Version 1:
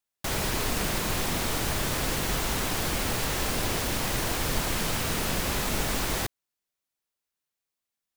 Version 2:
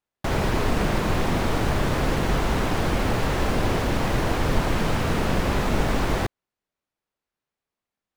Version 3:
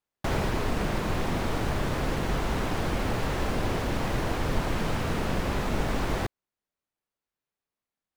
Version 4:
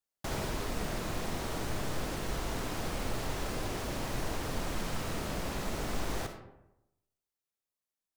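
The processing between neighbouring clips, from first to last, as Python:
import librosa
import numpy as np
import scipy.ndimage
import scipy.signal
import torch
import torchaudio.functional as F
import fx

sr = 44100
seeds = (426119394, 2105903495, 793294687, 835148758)

y1 = fx.lowpass(x, sr, hz=1200.0, slope=6)
y1 = F.gain(torch.from_numpy(y1), 8.0).numpy()
y2 = fx.rider(y1, sr, range_db=10, speed_s=0.5)
y2 = F.gain(torch.from_numpy(y2), -5.0).numpy()
y3 = fx.bass_treble(y2, sr, bass_db=-1, treble_db=9)
y3 = fx.rev_freeverb(y3, sr, rt60_s=0.9, hf_ratio=0.5, predelay_ms=15, drr_db=6.0)
y3 = F.gain(torch.from_numpy(y3), -8.5).numpy()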